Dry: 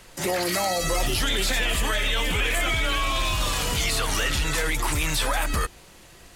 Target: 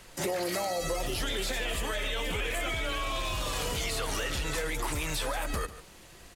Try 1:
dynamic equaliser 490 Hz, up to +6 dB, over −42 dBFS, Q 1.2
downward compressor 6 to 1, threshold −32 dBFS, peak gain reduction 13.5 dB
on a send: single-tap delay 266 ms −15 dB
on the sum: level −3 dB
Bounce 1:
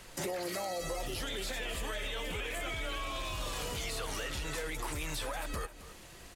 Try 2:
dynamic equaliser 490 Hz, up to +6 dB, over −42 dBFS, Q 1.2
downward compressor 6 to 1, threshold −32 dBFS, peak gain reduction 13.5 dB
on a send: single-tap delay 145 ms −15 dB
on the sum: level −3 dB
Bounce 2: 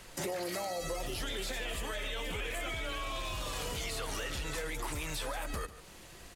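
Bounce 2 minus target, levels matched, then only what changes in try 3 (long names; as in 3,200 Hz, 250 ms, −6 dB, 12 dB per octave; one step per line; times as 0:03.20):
downward compressor: peak gain reduction +5.5 dB
change: downward compressor 6 to 1, threshold −25.5 dBFS, peak gain reduction 8.5 dB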